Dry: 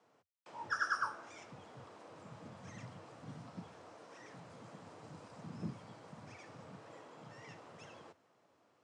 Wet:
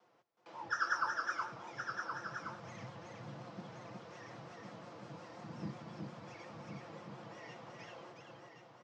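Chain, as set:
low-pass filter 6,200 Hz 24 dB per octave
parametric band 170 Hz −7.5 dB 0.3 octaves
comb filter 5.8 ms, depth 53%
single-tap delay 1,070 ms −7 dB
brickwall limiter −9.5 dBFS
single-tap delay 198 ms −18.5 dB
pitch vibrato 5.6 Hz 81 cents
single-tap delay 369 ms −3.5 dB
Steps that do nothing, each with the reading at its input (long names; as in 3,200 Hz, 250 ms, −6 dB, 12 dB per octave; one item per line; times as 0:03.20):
brickwall limiter −9.5 dBFS: peak of its input −21.5 dBFS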